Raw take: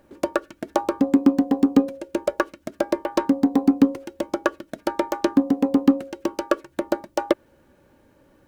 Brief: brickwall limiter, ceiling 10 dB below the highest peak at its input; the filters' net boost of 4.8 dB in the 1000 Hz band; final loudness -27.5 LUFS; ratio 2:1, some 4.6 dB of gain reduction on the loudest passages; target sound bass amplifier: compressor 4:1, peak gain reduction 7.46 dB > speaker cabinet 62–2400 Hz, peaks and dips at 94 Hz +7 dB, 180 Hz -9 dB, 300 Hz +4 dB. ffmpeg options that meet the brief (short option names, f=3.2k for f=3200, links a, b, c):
-af "equalizer=f=1k:t=o:g=6,acompressor=threshold=-19dB:ratio=2,alimiter=limit=-14dB:level=0:latency=1,acompressor=threshold=-27dB:ratio=4,highpass=f=62:w=0.5412,highpass=f=62:w=1.3066,equalizer=f=94:t=q:w=4:g=7,equalizer=f=180:t=q:w=4:g=-9,equalizer=f=300:t=q:w=4:g=4,lowpass=f=2.4k:w=0.5412,lowpass=f=2.4k:w=1.3066,volume=5.5dB"